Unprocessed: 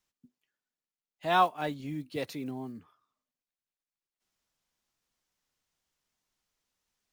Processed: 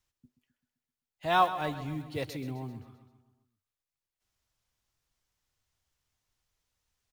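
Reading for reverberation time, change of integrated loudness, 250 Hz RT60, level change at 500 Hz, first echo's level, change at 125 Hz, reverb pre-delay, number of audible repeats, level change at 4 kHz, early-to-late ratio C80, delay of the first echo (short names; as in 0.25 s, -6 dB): none, 0.0 dB, none, 0.0 dB, -13.0 dB, +4.0 dB, none, 5, +0.5 dB, none, 0.13 s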